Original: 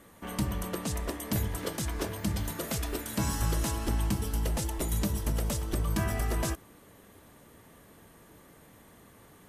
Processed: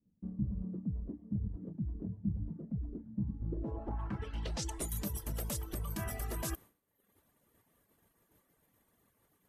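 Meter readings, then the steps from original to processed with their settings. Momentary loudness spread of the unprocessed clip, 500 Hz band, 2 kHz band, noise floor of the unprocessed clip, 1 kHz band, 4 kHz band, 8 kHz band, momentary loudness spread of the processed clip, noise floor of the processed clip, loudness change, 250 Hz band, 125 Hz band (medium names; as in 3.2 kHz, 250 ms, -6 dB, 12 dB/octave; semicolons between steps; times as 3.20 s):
4 LU, -10.0 dB, -12.0 dB, -56 dBFS, -11.0 dB, -10.5 dB, -8.5 dB, 3 LU, -77 dBFS, -7.5 dB, -5.0 dB, -6.5 dB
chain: expander -42 dBFS; reverb removal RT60 0.66 s; reverse; compression 6:1, threshold -39 dBFS, peak gain reduction 13.5 dB; reverse; low-pass sweep 200 Hz -> 13 kHz, 3.35–4.92 s; trim +3 dB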